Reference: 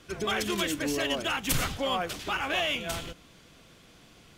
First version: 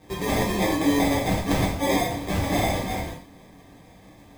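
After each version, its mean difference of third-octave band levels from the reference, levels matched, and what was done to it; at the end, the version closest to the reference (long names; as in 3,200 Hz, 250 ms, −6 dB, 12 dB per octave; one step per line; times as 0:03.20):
6.5 dB: decimation without filtering 31×
reverb whose tail is shaped and stops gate 160 ms falling, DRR −5 dB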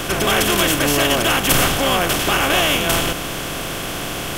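9.5 dB: compressor on every frequency bin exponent 0.4
high-shelf EQ 11,000 Hz +6 dB
level +6.5 dB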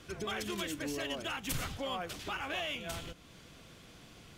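3.0 dB: downward compressor 1.5 to 1, threshold −50 dBFS, peak gain reduction 10 dB
parametric band 94 Hz +3 dB 1.5 octaves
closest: third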